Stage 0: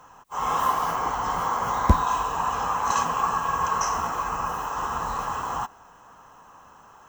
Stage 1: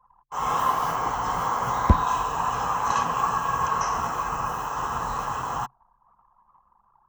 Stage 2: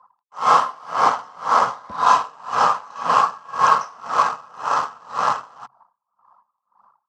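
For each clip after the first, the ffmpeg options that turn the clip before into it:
-filter_complex "[0:a]anlmdn=0.158,equalizer=f=130:t=o:w=0.23:g=9.5,acrossover=split=210|4800[a][b][c];[c]alimiter=level_in=9.5dB:limit=-24dB:level=0:latency=1:release=225,volume=-9.5dB[d];[a][b][d]amix=inputs=3:normalize=0"
-filter_complex "[0:a]asplit=2[a][b];[b]acrusher=bits=5:dc=4:mix=0:aa=0.000001,volume=-11dB[c];[a][c]amix=inputs=2:normalize=0,highpass=230,equalizer=f=350:t=q:w=4:g=-6,equalizer=f=600:t=q:w=4:g=6,equalizer=f=1.3k:t=q:w=4:g=7,equalizer=f=4.7k:t=q:w=4:g=7,equalizer=f=6.9k:t=q:w=4:g=-6,lowpass=f=8k:w=0.5412,lowpass=f=8k:w=1.3066,aeval=exprs='val(0)*pow(10,-30*(0.5-0.5*cos(2*PI*1.9*n/s))/20)':c=same,volume=7.5dB"

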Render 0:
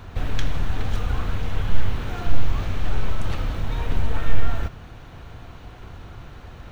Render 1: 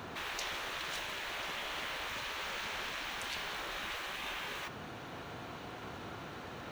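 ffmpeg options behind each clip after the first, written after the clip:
-af "highpass=200,afftfilt=real='re*lt(hypot(re,im),0.0355)':imag='im*lt(hypot(re,im),0.0355)':win_size=1024:overlap=0.75,volume=1.5dB"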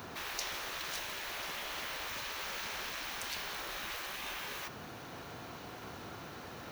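-af "aexciter=amount=2.1:drive=4.3:freq=4.6k,volume=-1.5dB"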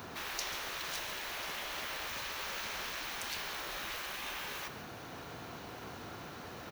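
-filter_complex "[0:a]asplit=2[a][b];[b]adelay=139.9,volume=-10dB,highshelf=f=4k:g=-3.15[c];[a][c]amix=inputs=2:normalize=0"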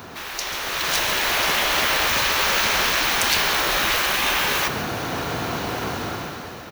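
-af "dynaudnorm=f=320:g=5:m=12.5dB,volume=7.5dB"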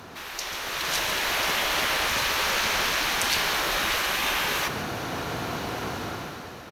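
-af "aresample=32000,aresample=44100,volume=-4.5dB"

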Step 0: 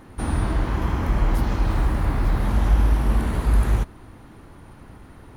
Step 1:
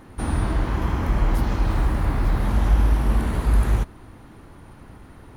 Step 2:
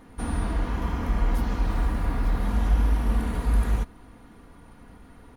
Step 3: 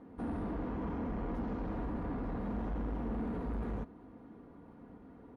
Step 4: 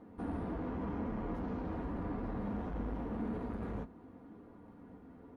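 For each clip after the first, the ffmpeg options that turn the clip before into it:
-af anull
-af "aecho=1:1:4.2:0.45,volume=-5dB"
-af "bandpass=f=330:t=q:w=0.77:csg=0,asoftclip=type=tanh:threshold=-32dB"
-af "flanger=delay=8.9:depth=3.4:regen=-34:speed=0.88:shape=triangular,volume=3dB"

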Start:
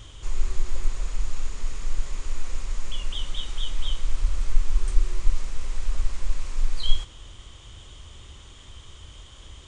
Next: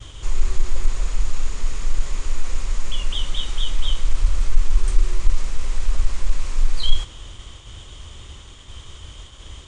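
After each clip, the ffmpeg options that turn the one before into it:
-af "agate=range=-33dB:threshold=-42dB:ratio=3:detection=peak,acontrast=56"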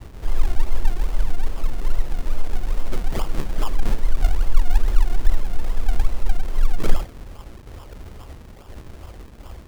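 -af "acrusher=samples=42:mix=1:aa=0.000001:lfo=1:lforange=42:lforate=2.4"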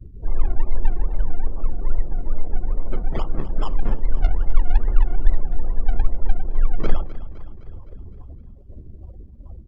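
-af "afftdn=nr=32:nf=-36,aecho=1:1:257|514|771|1028|1285|1542:0.168|0.0974|0.0565|0.0328|0.019|0.011"

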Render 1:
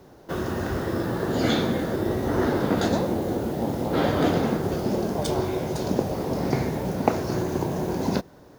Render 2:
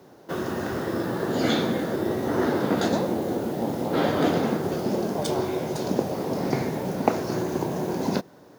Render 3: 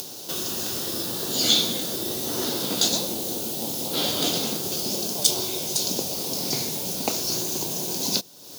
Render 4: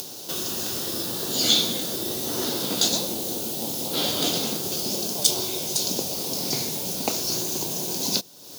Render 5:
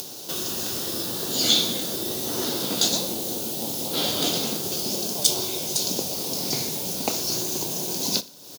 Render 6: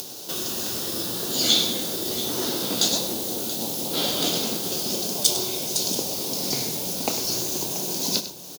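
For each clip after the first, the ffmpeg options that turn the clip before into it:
-af "highpass=140"
-af "acompressor=mode=upward:threshold=-28dB:ratio=2.5,aexciter=amount=10.2:drive=6.5:freq=2.8k,volume=-7dB"
-af anull
-af "aecho=1:1:60|120|180:0.106|0.0455|0.0196"
-af "bandreject=f=50:t=h:w=6,bandreject=f=100:t=h:w=6,bandreject=f=150:t=h:w=6,aecho=1:1:100|681:0.237|0.211"

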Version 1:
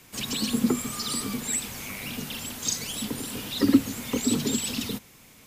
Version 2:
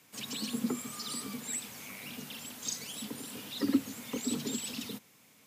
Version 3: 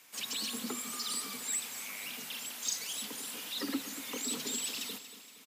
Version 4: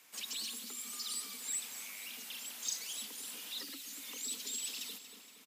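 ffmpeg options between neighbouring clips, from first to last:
-af "highpass=150,bandreject=f=360:w=12,volume=-8.5dB"
-filter_complex "[0:a]highpass=f=920:p=1,asplit=2[a][b];[b]asoftclip=type=tanh:threshold=-37dB,volume=-4.5dB[c];[a][c]amix=inputs=2:normalize=0,aecho=1:1:234|468|702|936|1170:0.224|0.116|0.0605|0.0315|0.0164"
-filter_complex "[0:a]equalizer=f=140:t=o:w=0.25:g=-5.5,bandreject=f=50:t=h:w=6,bandreject=f=100:t=h:w=6,bandreject=f=150:t=h:w=6,acrossover=split=2400[a][b];[a]acompressor=threshold=-52dB:ratio=5[c];[c][b]amix=inputs=2:normalize=0,volume=-3dB"

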